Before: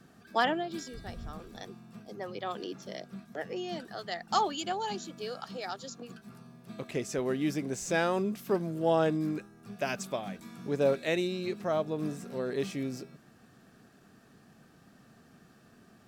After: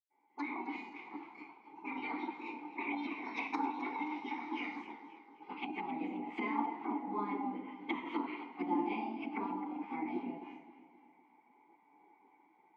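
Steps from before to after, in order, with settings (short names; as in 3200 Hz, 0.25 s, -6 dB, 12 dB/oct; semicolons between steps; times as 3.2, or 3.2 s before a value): low-pass opened by the level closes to 400 Hz, open at -25 dBFS; AGC gain up to 9 dB; reverb RT60 0.70 s, pre-delay 0.117 s; treble ducked by the level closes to 500 Hz, closed at -11.5 dBFS; tilt +4.5 dB/oct; spectral gate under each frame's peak -10 dB weak; HPF 160 Hz 24 dB/oct; varispeed +26%; vowel filter u; warbling echo 0.263 s, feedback 46%, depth 51 cents, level -14.5 dB; gain +5.5 dB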